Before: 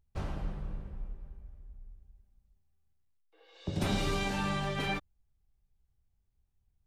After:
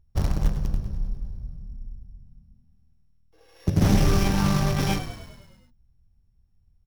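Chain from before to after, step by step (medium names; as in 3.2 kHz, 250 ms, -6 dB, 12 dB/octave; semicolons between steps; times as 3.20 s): sorted samples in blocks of 8 samples; treble shelf 4.3 kHz -8 dB; in parallel at -9.5 dB: bit crusher 5-bit; on the sum: tone controls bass +8 dB, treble +2 dB; frequency-shifting echo 102 ms, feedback 61%, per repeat -39 Hz, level -11 dB; loudspeaker Doppler distortion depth 0.25 ms; trim +4 dB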